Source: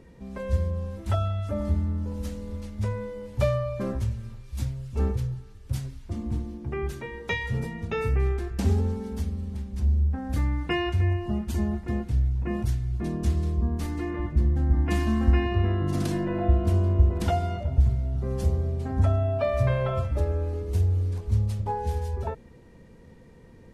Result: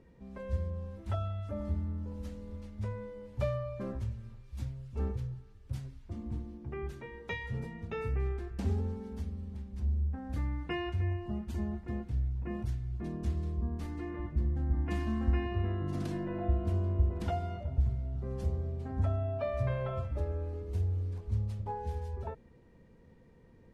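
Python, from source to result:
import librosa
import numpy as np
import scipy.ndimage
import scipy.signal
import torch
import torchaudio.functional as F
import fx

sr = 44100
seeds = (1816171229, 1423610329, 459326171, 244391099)

y = fx.high_shelf(x, sr, hz=5100.0, db=-9.0)
y = y * librosa.db_to_amplitude(-8.5)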